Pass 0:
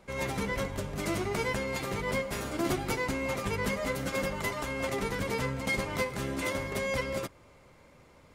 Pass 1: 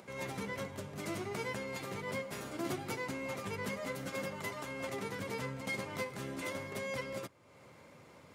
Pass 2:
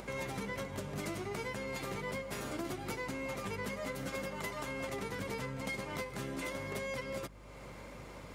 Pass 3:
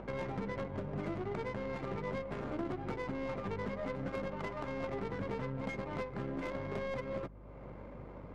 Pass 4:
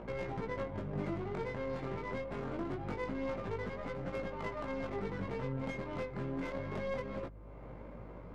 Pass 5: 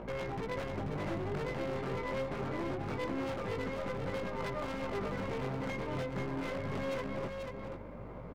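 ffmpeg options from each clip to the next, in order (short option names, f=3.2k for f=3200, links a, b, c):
-af "acompressor=mode=upward:threshold=-39dB:ratio=2.5,highpass=f=94:w=0.5412,highpass=f=94:w=1.3066,volume=-7.5dB"
-af "acompressor=threshold=-44dB:ratio=6,aeval=exprs='val(0)+0.000891*(sin(2*PI*50*n/s)+sin(2*PI*2*50*n/s)/2+sin(2*PI*3*50*n/s)/3+sin(2*PI*4*50*n/s)/4+sin(2*PI*5*50*n/s)/5)':c=same,volume=7.5dB"
-af "adynamicsmooth=sensitivity=3.5:basefreq=1k,aeval=exprs='0.0447*(cos(1*acos(clip(val(0)/0.0447,-1,1)))-cos(1*PI/2))+0.00178*(cos(8*acos(clip(val(0)/0.0447,-1,1)))-cos(8*PI/2))':c=same,volume=2dB"
-af "flanger=delay=17:depth=6:speed=0.25,volume=2.5dB"
-filter_complex "[0:a]aeval=exprs='0.02*(abs(mod(val(0)/0.02+3,4)-2)-1)':c=same,asplit=2[a][b];[b]aecho=0:1:487:0.562[c];[a][c]amix=inputs=2:normalize=0,volume=2.5dB"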